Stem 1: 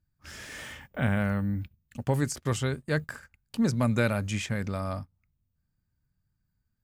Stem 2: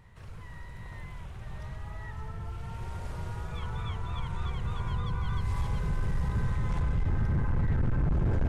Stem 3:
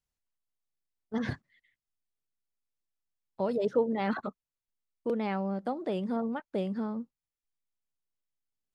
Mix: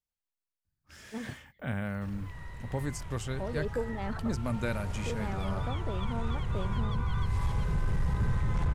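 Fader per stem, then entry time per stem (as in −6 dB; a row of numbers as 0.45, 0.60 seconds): −7.5, +0.5, −7.0 decibels; 0.65, 1.85, 0.00 seconds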